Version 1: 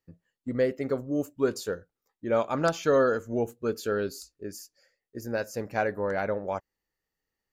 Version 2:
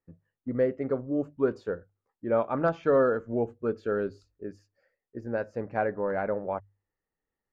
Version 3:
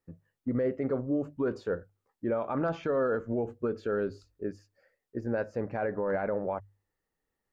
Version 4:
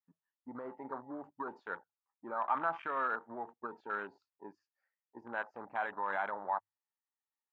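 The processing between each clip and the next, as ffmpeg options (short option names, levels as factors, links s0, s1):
-af "lowpass=1600,bandreject=f=50:t=h:w=6,bandreject=f=100:t=h:w=6,bandreject=f=150:t=h:w=6"
-af "alimiter=level_in=1.12:limit=0.0631:level=0:latency=1:release=45,volume=0.891,volume=1.5"
-af "highpass=300,lowpass=4400,afwtdn=0.00794,lowshelf=f=680:t=q:w=3:g=-10"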